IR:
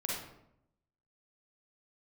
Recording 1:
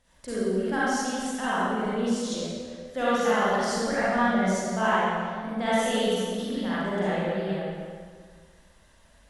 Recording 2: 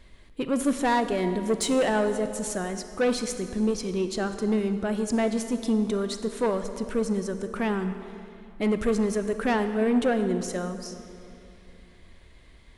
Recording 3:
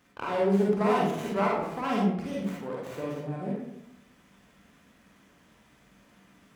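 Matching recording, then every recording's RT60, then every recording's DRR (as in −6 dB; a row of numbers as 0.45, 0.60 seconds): 3; 1.8, 2.8, 0.75 seconds; −10.5, 8.5, −4.0 decibels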